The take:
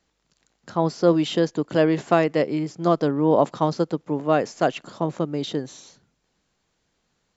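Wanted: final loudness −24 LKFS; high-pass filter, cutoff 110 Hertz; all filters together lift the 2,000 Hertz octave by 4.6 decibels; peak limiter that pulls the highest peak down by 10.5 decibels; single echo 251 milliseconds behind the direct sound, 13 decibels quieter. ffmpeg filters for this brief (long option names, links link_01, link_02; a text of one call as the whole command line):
ffmpeg -i in.wav -af "highpass=110,equalizer=frequency=2000:width_type=o:gain=6,alimiter=limit=-14dB:level=0:latency=1,aecho=1:1:251:0.224,volume=2dB" out.wav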